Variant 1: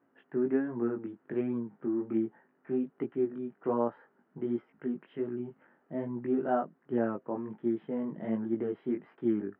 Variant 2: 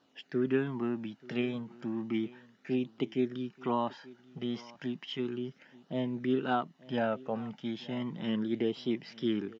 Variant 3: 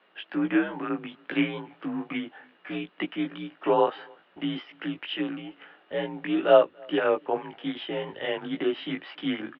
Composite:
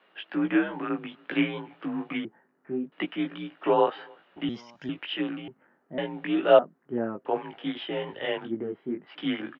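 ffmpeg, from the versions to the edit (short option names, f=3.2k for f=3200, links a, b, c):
-filter_complex "[0:a]asplit=4[a][b][c][d];[2:a]asplit=6[e][f][g][h][i][j];[e]atrim=end=2.252[k];[a]atrim=start=2.248:end=2.922[l];[f]atrim=start=2.918:end=4.492[m];[1:a]atrim=start=4.488:end=4.892[n];[g]atrim=start=4.888:end=5.482[o];[b]atrim=start=5.478:end=5.982[p];[h]atrim=start=5.978:end=6.592[q];[c]atrim=start=6.588:end=7.252[r];[i]atrim=start=7.248:end=8.52[s];[d]atrim=start=8.42:end=9.16[t];[j]atrim=start=9.06[u];[k][l]acrossfade=d=0.004:c1=hsin:c2=hsin[v];[v][m]acrossfade=d=0.004:c1=hsin:c2=hsin[w];[w][n]acrossfade=d=0.004:c1=hsin:c2=hsin[x];[x][o]acrossfade=d=0.004:c1=hsin:c2=hsin[y];[y][p]acrossfade=d=0.004:c1=hsin:c2=hsin[z];[z][q]acrossfade=d=0.004:c1=hsin:c2=hsin[aa];[aa][r]acrossfade=d=0.004:c1=hsin:c2=hsin[ab];[ab][s]acrossfade=d=0.004:c1=hsin:c2=hsin[ac];[ac][t]acrossfade=d=0.1:c1=tri:c2=tri[ad];[ad][u]acrossfade=d=0.1:c1=tri:c2=tri"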